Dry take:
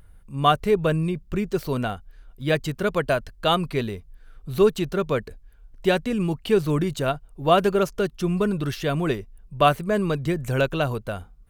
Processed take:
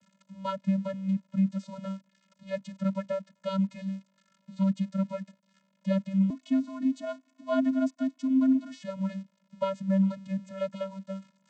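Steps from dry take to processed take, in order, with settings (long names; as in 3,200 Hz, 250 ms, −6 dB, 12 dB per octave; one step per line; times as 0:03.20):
spike at every zero crossing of −20.5 dBFS
channel vocoder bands 16, square 193 Hz
0:06.30–0:08.83: frequency shifter +70 Hz
level −5.5 dB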